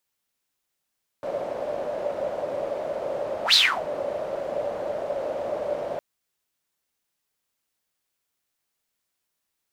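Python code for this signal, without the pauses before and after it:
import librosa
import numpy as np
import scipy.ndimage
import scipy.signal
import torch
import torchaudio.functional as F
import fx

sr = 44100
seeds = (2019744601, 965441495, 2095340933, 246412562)

y = fx.whoosh(sr, seeds[0], length_s=4.76, peak_s=2.31, rise_s=0.1, fall_s=0.3, ends_hz=580.0, peak_hz=4200.0, q=8.9, swell_db=13)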